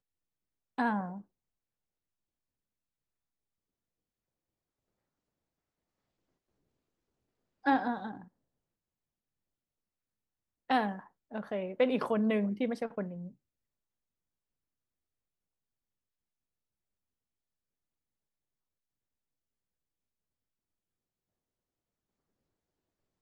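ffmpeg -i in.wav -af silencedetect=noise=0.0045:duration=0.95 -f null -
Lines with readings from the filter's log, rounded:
silence_start: 1.21
silence_end: 7.65 | silence_duration: 6.44
silence_start: 8.24
silence_end: 10.70 | silence_duration: 2.46
silence_start: 13.29
silence_end: 23.21 | silence_duration: 9.92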